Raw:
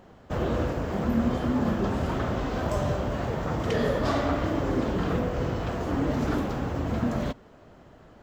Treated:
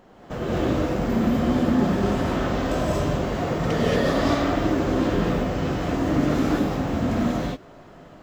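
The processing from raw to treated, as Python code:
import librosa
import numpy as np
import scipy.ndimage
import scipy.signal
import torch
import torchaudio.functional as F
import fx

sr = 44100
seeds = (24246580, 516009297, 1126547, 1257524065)

y = fx.peak_eq(x, sr, hz=73.0, db=-9.5, octaves=1.0)
y = fx.rev_gated(y, sr, seeds[0], gate_ms=260, shape='rising', drr_db=-6.0)
y = fx.dynamic_eq(y, sr, hz=960.0, q=0.87, threshold_db=-36.0, ratio=4.0, max_db=-4)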